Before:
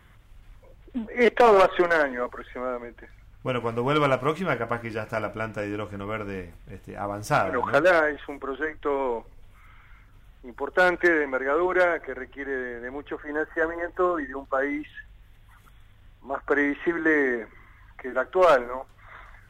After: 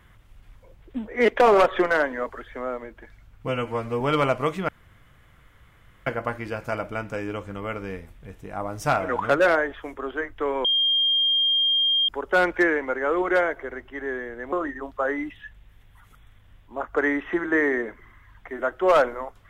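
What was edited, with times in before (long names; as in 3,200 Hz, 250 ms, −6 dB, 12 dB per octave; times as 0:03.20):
0:03.48–0:03.83: time-stretch 1.5×
0:04.51: splice in room tone 1.38 s
0:09.09–0:10.53: beep over 3,210 Hz −18 dBFS
0:12.97–0:14.06: remove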